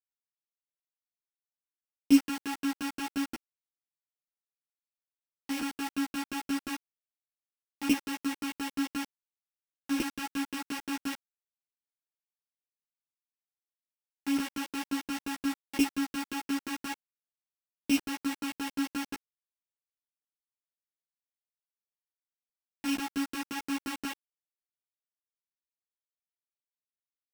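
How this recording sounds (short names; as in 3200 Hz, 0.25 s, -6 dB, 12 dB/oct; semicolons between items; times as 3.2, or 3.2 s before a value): a buzz of ramps at a fixed pitch in blocks of 16 samples; tremolo saw down 5.7 Hz, depth 95%; a quantiser's noise floor 6-bit, dither none; a shimmering, thickened sound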